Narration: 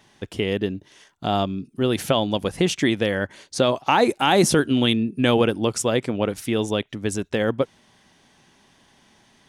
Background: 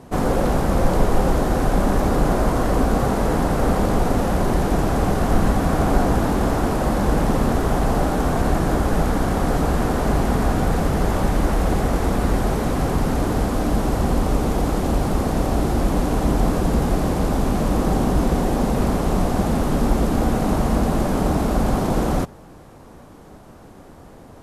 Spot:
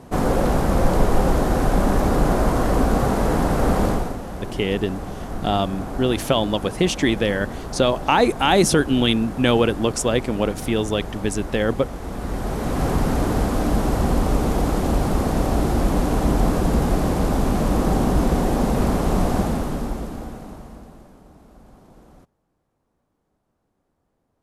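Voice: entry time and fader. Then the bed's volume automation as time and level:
4.20 s, +1.0 dB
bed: 0:03.88 0 dB
0:04.20 −12 dB
0:11.97 −12 dB
0:12.87 0 dB
0:19.36 0 dB
0:21.23 −29 dB

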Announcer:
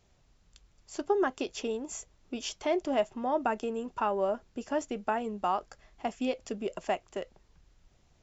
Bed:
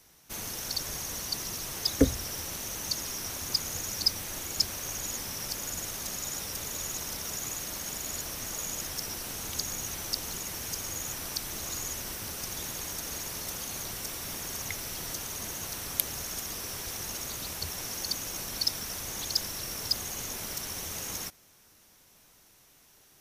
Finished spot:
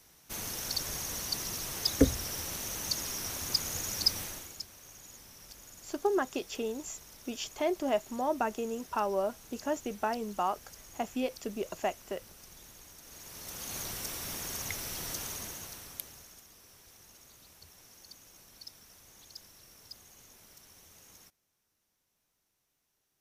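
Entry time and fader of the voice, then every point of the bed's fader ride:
4.95 s, −1.5 dB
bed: 0:04.23 −1 dB
0:04.65 −16.5 dB
0:13.00 −16.5 dB
0:13.76 −1.5 dB
0:15.28 −1.5 dB
0:16.48 −20 dB

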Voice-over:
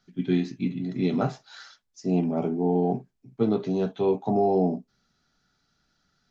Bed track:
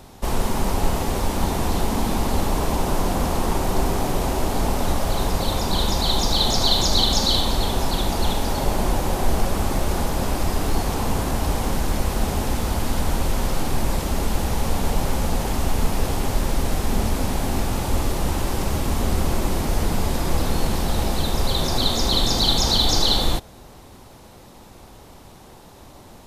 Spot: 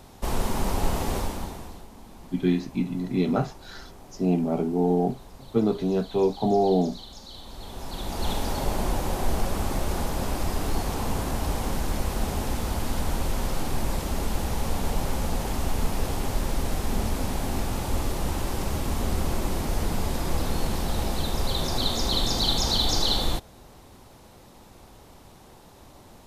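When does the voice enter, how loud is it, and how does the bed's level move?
2.15 s, +1.0 dB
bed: 0:01.17 −4 dB
0:01.89 −24.5 dB
0:07.30 −24.5 dB
0:08.32 −5 dB

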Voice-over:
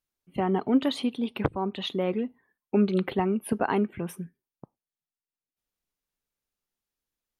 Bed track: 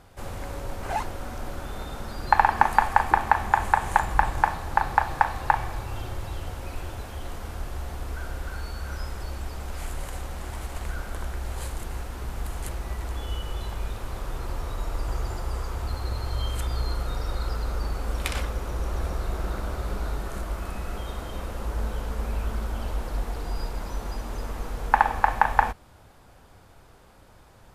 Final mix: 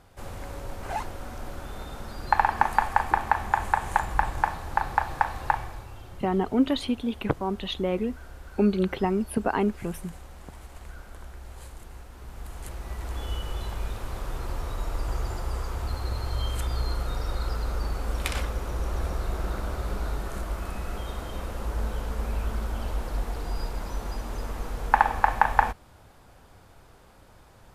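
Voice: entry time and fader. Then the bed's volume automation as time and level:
5.85 s, +0.5 dB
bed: 0:05.51 −3 dB
0:05.98 −10.5 dB
0:12.10 −10.5 dB
0:13.23 −0.5 dB

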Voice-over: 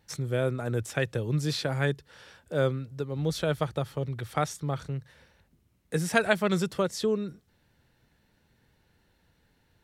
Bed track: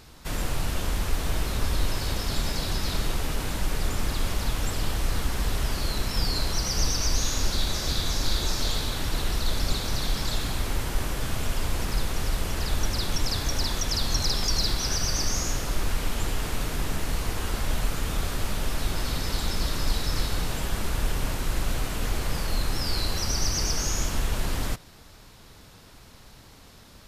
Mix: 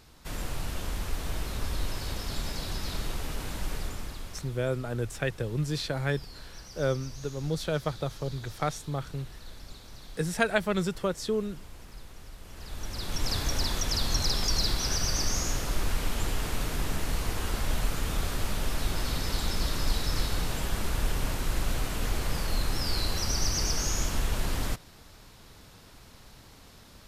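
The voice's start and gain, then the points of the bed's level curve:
4.25 s, −2.0 dB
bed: 0:03.74 −6 dB
0:04.63 −19.5 dB
0:12.39 −19.5 dB
0:13.31 −2 dB

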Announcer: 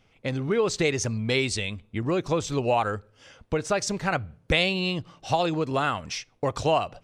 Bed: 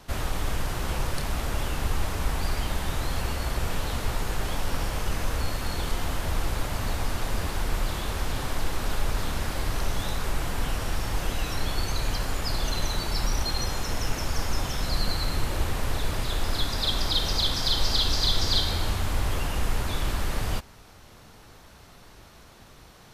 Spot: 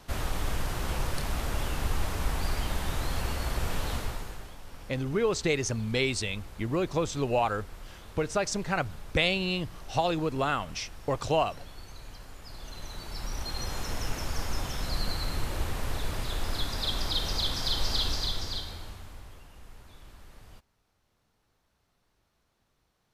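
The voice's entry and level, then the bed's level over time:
4.65 s, −3.0 dB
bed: 0:03.95 −2.5 dB
0:04.56 −18 dB
0:12.39 −18 dB
0:13.79 −4.5 dB
0:18.06 −4.5 dB
0:19.45 −23.5 dB

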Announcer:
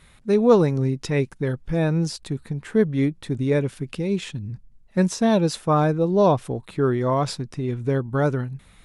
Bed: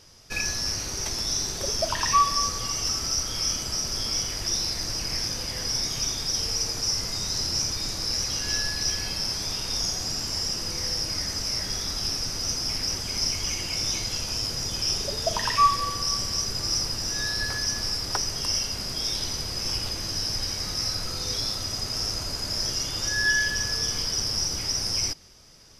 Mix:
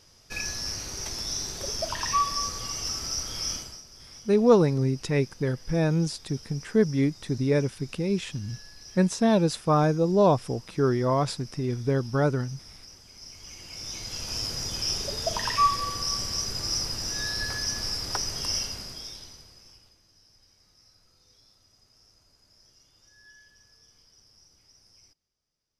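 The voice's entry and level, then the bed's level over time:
4.00 s, −2.5 dB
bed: 0:03.56 −4.5 dB
0:03.85 −20.5 dB
0:13.19 −20.5 dB
0:14.37 −2.5 dB
0:18.61 −2.5 dB
0:20.03 −32 dB

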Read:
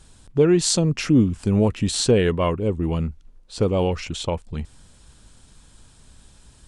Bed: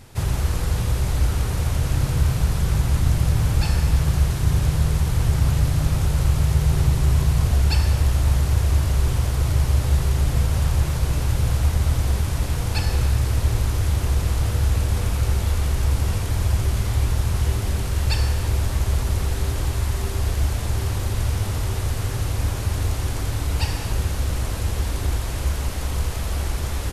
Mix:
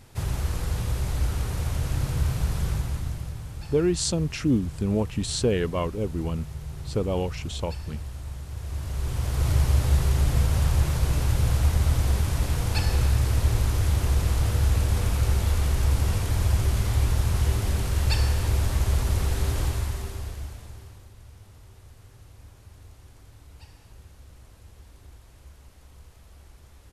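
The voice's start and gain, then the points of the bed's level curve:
3.35 s, −6.0 dB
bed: 0:02.66 −5.5 dB
0:03.44 −17.5 dB
0:08.47 −17.5 dB
0:09.49 −2 dB
0:19.64 −2 dB
0:21.13 −25.5 dB

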